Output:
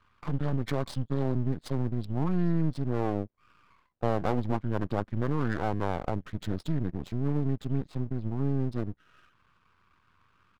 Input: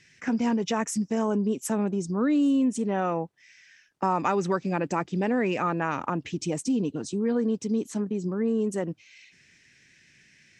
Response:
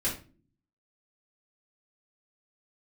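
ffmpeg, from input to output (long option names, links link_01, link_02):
-af "adynamicsmooth=sensitivity=6.5:basefreq=2900,asetrate=26990,aresample=44100,atempo=1.63392,aeval=exprs='max(val(0),0)':channel_layout=same"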